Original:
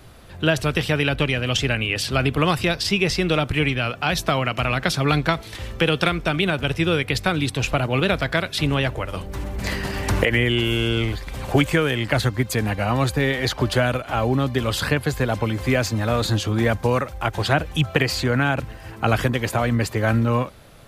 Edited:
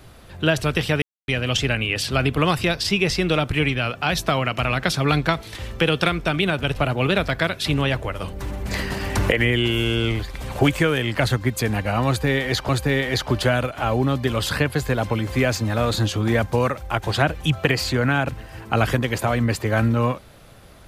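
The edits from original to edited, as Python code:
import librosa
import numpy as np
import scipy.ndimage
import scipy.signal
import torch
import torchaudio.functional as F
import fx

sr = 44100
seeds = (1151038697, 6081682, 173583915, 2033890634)

y = fx.edit(x, sr, fx.silence(start_s=1.02, length_s=0.26),
    fx.cut(start_s=6.76, length_s=0.93),
    fx.repeat(start_s=13.0, length_s=0.62, count=2), tone=tone)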